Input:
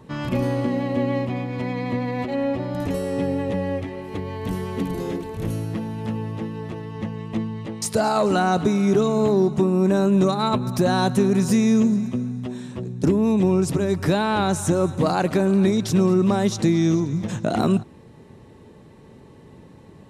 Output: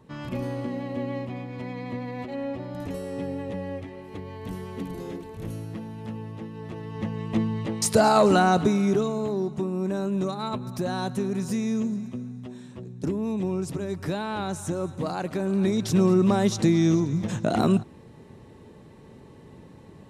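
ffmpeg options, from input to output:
ffmpeg -i in.wav -af "volume=9.5dB,afade=type=in:start_time=6.51:duration=1:silence=0.316228,afade=type=out:start_time=8.19:duration=1.03:silence=0.281838,afade=type=in:start_time=15.35:duration=0.72:silence=0.421697" out.wav

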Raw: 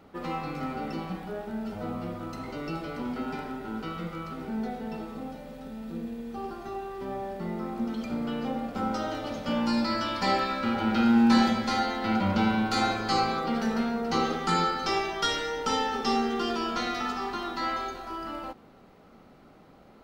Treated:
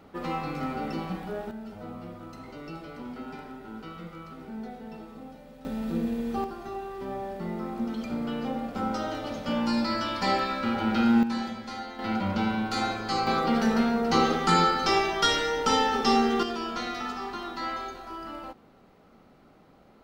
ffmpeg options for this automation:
ffmpeg -i in.wav -af "asetnsamples=nb_out_samples=441:pad=0,asendcmd='1.51 volume volume -6dB;5.65 volume volume 7dB;6.44 volume volume 0dB;11.23 volume volume -10dB;11.99 volume volume -2.5dB;13.27 volume volume 4dB;16.43 volume volume -2.5dB',volume=1.5dB" out.wav

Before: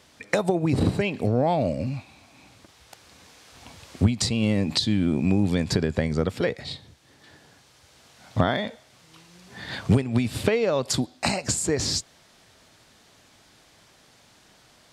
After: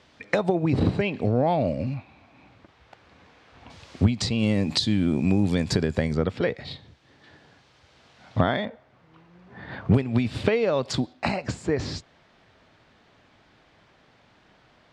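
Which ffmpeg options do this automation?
ffmpeg -i in.wav -af "asetnsamples=nb_out_samples=441:pad=0,asendcmd='1.94 lowpass f 2400;3.7 lowpass f 5200;4.39 lowpass f 9600;6.15 lowpass f 3800;8.65 lowpass f 1600;9.94 lowpass f 4300;11.13 lowpass f 2700',lowpass=4000" out.wav

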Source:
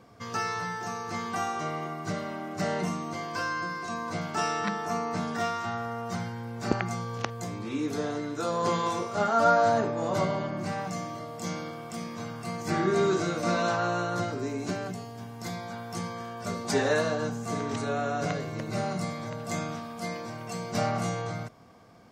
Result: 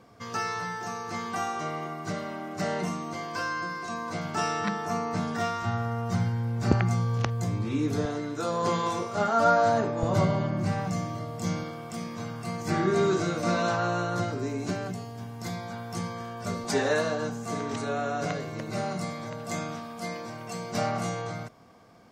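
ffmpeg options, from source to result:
ffmpeg -i in.wav -af "asetnsamples=nb_out_samples=441:pad=0,asendcmd='4.25 equalizer g 5.5;5.62 equalizer g 12.5;8.05 equalizer g 2.5;10.03 equalizer g 12;11.63 equalizer g 4;16.64 equalizer g -2.5',equalizer=frequency=93:width_type=o:width=1.8:gain=-1.5" out.wav

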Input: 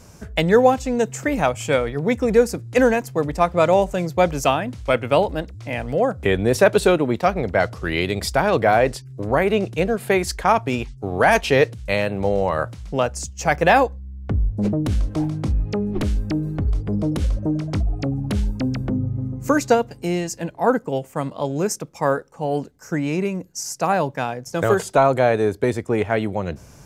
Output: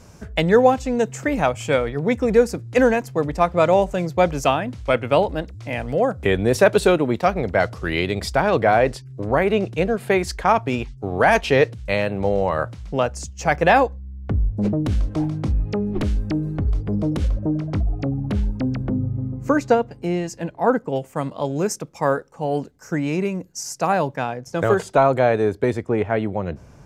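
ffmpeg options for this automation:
ffmpeg -i in.wav -af "asetnsamples=nb_out_samples=441:pad=0,asendcmd='5.45 lowpass f 12000;8.01 lowpass f 5200;17.28 lowpass f 2100;20.24 lowpass f 3500;20.96 lowpass f 9100;24.16 lowpass f 3900;25.85 lowpass f 1900',lowpass=frequency=6200:poles=1" out.wav

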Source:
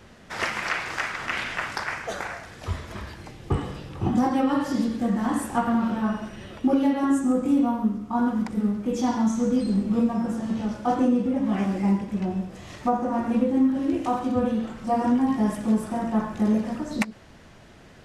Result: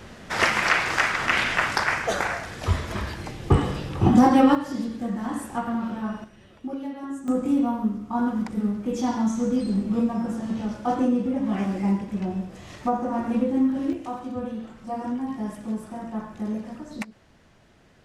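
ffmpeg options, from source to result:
ffmpeg -i in.wav -af "asetnsamples=nb_out_samples=441:pad=0,asendcmd='4.55 volume volume -4.5dB;6.24 volume volume -11.5dB;7.28 volume volume -1dB;13.93 volume volume -7.5dB',volume=6.5dB" out.wav

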